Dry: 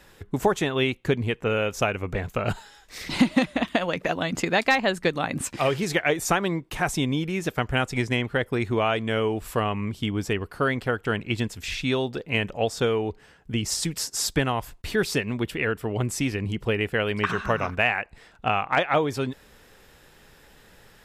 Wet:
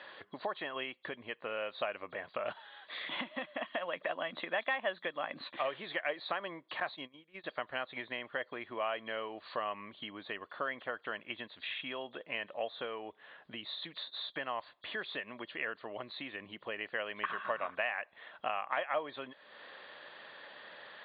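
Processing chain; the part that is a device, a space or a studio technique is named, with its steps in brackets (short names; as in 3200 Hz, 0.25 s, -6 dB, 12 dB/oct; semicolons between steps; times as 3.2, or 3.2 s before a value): hearing aid with frequency lowering (nonlinear frequency compression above 3200 Hz 4:1; compressor 2.5:1, threshold -44 dBFS, peak gain reduction 19.5 dB; speaker cabinet 370–5100 Hz, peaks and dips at 420 Hz -5 dB, 600 Hz +9 dB, 1100 Hz +8 dB, 1800 Hz +7 dB, 3000 Hz +4 dB, 4400 Hz -10 dB); 6.8–7.44 gate -42 dBFS, range -22 dB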